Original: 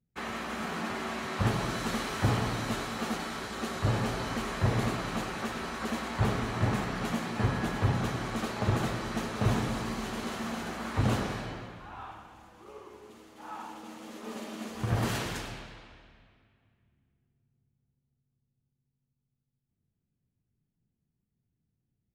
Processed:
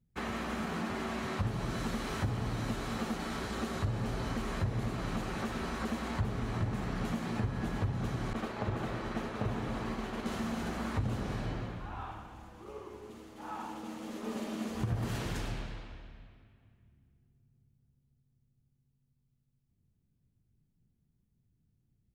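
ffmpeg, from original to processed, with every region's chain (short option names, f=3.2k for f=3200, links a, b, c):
-filter_complex "[0:a]asettb=1/sr,asplit=3[a][b][c];[a]atrim=end=8.334[d];[b]atrim=start=8.33:end=10.26,asetpts=PTS-STARTPTS,afade=t=in:d=0.004:c=qsin,afade=t=out:st=1.926:d=0.004:c=qsin,agate=range=-33dB:threshold=-34dB:ratio=3:release=100:detection=peak,bass=f=250:g=-7,treble=f=4k:g=-8[e];[c]atrim=start=10.256[f];[d][e]acrossfade=d=0.004:c1=hsin:c2=qsin[g];[g][f]acrossfade=d=0.004:c1=qsin:c2=hsin,lowshelf=f=74:g=8,acompressor=threshold=-34dB:ratio=6,lowshelf=f=490:g=5.5,volume=-1dB"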